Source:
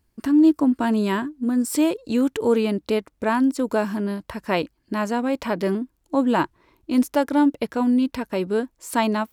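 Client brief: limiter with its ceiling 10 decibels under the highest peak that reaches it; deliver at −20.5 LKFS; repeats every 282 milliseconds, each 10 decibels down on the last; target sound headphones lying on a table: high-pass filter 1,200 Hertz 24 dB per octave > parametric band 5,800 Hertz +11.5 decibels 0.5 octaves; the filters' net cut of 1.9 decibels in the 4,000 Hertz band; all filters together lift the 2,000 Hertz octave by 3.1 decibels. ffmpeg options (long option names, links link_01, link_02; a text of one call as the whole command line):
ffmpeg -i in.wav -af "equalizer=frequency=2000:width_type=o:gain=6,equalizer=frequency=4000:width_type=o:gain=-9,alimiter=limit=-17dB:level=0:latency=1,highpass=frequency=1200:width=0.5412,highpass=frequency=1200:width=1.3066,equalizer=frequency=5800:width_type=o:width=0.5:gain=11.5,aecho=1:1:282|564|846|1128:0.316|0.101|0.0324|0.0104,volume=15.5dB" out.wav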